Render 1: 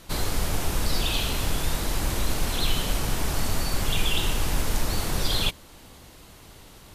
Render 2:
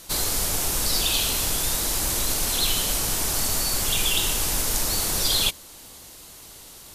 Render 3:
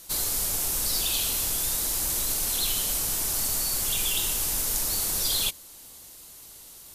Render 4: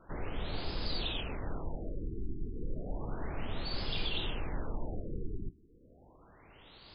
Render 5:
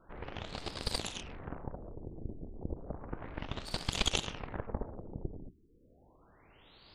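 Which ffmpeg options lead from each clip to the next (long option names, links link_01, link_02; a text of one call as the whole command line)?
ffmpeg -i in.wav -af "bass=frequency=250:gain=-5,treble=frequency=4000:gain=11" out.wav
ffmpeg -i in.wav -af "crystalizer=i=1:c=0,volume=-7.5dB" out.wav
ffmpeg -i in.wav -filter_complex "[0:a]acrossover=split=640[link_01][link_02];[link_02]alimiter=limit=-23.5dB:level=0:latency=1:release=211[link_03];[link_01][link_03]amix=inputs=2:normalize=0,afftfilt=real='re*lt(b*sr/1024,420*pow(5200/420,0.5+0.5*sin(2*PI*0.32*pts/sr)))':imag='im*lt(b*sr/1024,420*pow(5200/420,0.5+0.5*sin(2*PI*0.32*pts/sr)))':win_size=1024:overlap=0.75,volume=1dB" out.wav
ffmpeg -i in.wav -af "aeval=exprs='0.0891*(cos(1*acos(clip(val(0)/0.0891,-1,1)))-cos(1*PI/2))+0.0355*(cos(3*acos(clip(val(0)/0.0891,-1,1)))-cos(3*PI/2))':channel_layout=same,volume=10.5dB" out.wav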